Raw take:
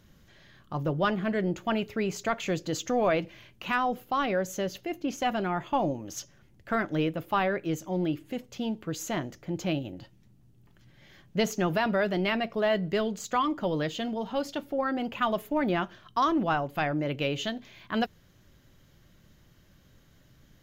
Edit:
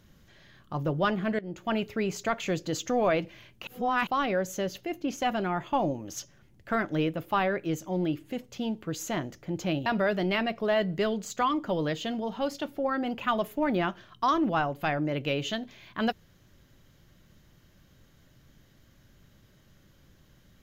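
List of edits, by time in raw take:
1.39–1.75 s: fade in, from -19 dB
3.67–4.07 s: reverse
9.86–11.80 s: delete

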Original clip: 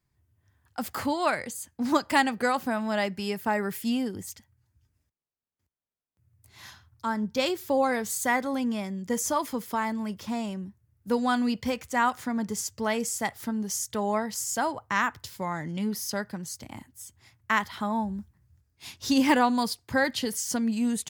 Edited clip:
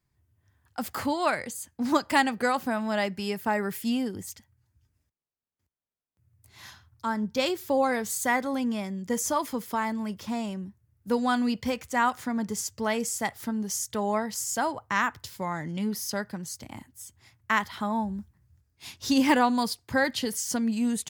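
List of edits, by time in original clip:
no edits

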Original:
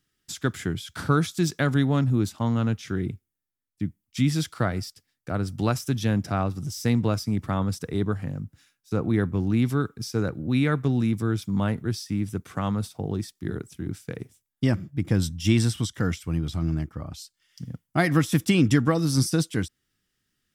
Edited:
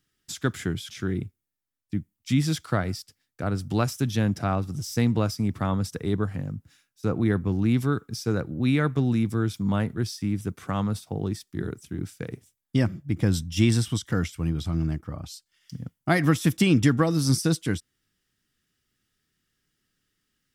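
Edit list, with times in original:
0.90–2.78 s: delete

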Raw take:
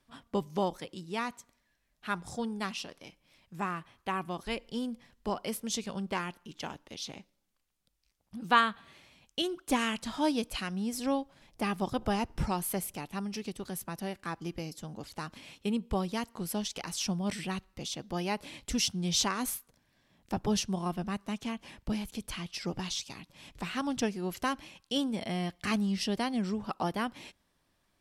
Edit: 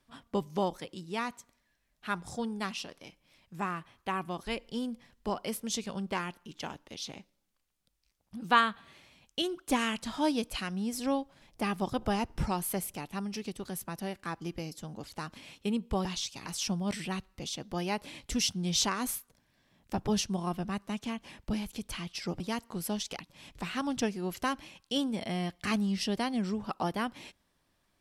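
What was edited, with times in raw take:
16.05–16.85 s: swap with 22.79–23.20 s

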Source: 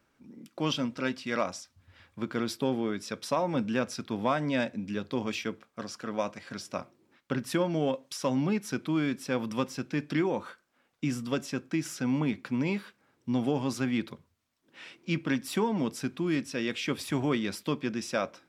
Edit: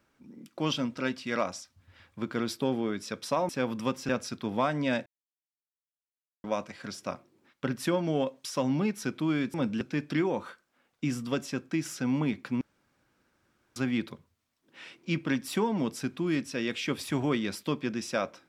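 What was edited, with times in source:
3.49–3.76 s: swap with 9.21–9.81 s
4.73–6.11 s: mute
12.61–13.76 s: room tone

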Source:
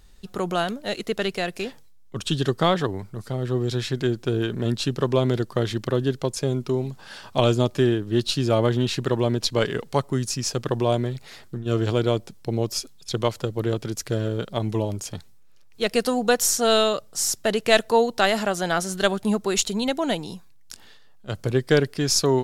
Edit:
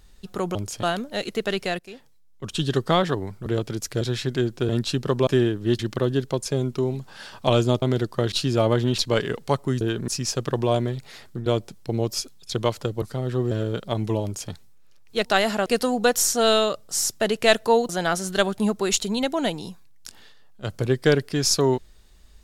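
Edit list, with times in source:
1.51–2.44 s: fade in, from -15.5 dB
3.18–3.67 s: swap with 13.61–14.16 s
4.35–4.62 s: move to 10.26 s
5.20–5.70 s: swap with 7.73–8.25 s
8.91–9.43 s: delete
11.64–12.05 s: delete
14.88–15.16 s: copy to 0.55 s
18.13–18.54 s: move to 15.90 s

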